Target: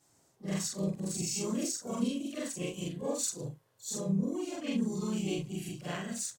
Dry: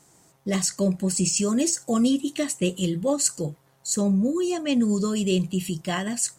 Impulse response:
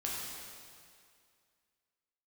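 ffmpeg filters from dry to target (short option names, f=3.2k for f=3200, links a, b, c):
-filter_complex "[0:a]afftfilt=real='re':imag='-im':win_size=4096:overlap=0.75,asplit=4[a][b][c][d];[b]asetrate=35002,aresample=44100,atempo=1.25992,volume=-16dB[e];[c]asetrate=37084,aresample=44100,atempo=1.18921,volume=-5dB[f];[d]asetrate=88200,aresample=44100,atempo=0.5,volume=-18dB[g];[a][e][f][g]amix=inputs=4:normalize=0,volume=-7.5dB"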